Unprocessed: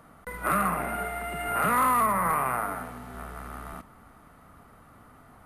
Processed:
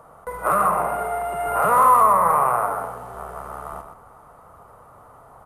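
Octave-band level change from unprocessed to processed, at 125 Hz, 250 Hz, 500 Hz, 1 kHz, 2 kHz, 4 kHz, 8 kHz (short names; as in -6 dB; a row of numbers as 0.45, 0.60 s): 0.0 dB, -3.0 dB, +10.0 dB, +9.0 dB, +0.5 dB, n/a, +2.5 dB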